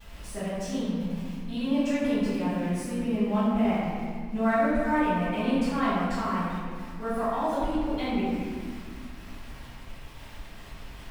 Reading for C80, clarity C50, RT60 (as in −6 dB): −1.0 dB, −3.5 dB, 1.9 s